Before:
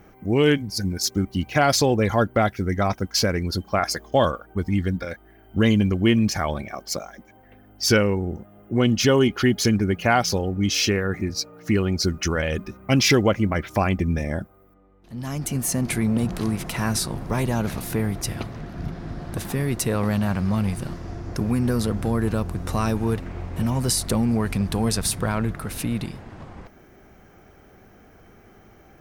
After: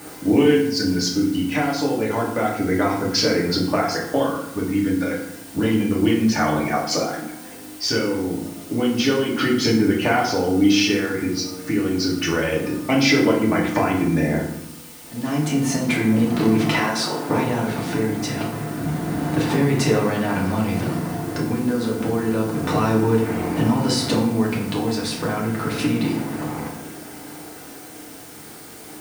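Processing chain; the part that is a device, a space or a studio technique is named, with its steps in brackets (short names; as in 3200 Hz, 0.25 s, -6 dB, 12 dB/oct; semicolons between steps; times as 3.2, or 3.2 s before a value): medium wave at night (BPF 200–4400 Hz; compressor, threshold -29 dBFS, peak gain reduction 14.5 dB; tremolo 0.3 Hz, depth 44%; whine 9000 Hz -60 dBFS; white noise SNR 19 dB); 16.75–17.29 HPF 330 Hz 12 dB/oct; FDN reverb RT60 0.78 s, low-frequency decay 1.55×, high-frequency decay 0.65×, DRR -4 dB; gain +8 dB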